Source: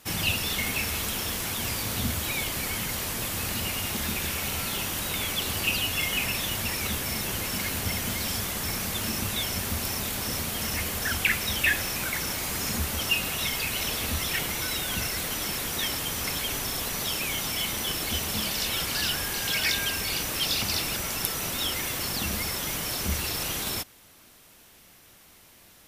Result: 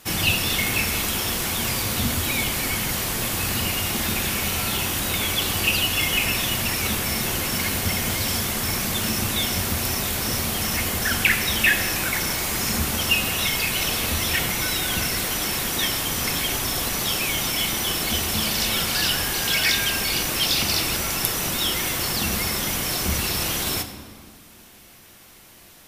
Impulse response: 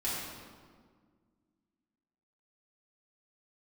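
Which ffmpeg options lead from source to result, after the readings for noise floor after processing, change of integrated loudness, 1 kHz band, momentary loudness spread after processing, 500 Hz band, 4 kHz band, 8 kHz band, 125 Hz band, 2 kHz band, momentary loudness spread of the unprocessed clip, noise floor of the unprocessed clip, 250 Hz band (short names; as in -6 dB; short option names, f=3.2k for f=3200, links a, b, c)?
-48 dBFS, +5.5 dB, +6.0 dB, 4 LU, +5.5 dB, +5.5 dB, +5.5 dB, +5.5 dB, +5.5 dB, 4 LU, -54 dBFS, +6.5 dB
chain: -filter_complex "[0:a]asplit=2[a][b];[1:a]atrim=start_sample=2205[c];[b][c]afir=irnorm=-1:irlink=0,volume=-11dB[d];[a][d]amix=inputs=2:normalize=0,volume=3.5dB"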